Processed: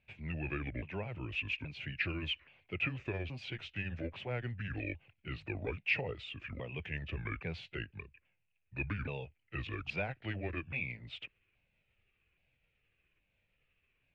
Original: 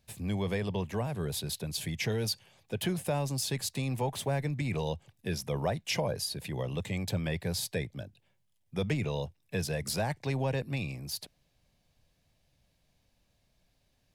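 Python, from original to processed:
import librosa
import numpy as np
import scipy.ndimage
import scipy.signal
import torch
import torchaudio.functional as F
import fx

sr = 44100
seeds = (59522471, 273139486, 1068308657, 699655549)

y = fx.pitch_ramps(x, sr, semitones=-8.5, every_ms=825)
y = fx.ladder_lowpass(y, sr, hz=2700.0, resonance_pct=75)
y = F.gain(torch.from_numpy(y), 5.0).numpy()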